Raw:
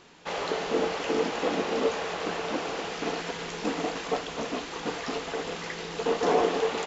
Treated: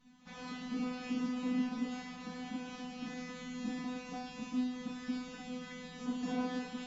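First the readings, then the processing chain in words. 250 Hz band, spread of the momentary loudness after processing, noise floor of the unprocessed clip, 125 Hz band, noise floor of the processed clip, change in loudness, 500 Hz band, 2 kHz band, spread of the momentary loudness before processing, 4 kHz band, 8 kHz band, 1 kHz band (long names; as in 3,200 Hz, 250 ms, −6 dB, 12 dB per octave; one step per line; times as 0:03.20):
−1.5 dB, 9 LU, −39 dBFS, −8.0 dB, −50 dBFS, −10.0 dB, −21.0 dB, −13.5 dB, 8 LU, −14.0 dB, can't be measured, −15.5 dB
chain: low shelf with overshoot 290 Hz +13.5 dB, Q 3
tuned comb filter 250 Hz, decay 0.7 s, mix 100%
echo ahead of the sound 69 ms −18 dB
level +3.5 dB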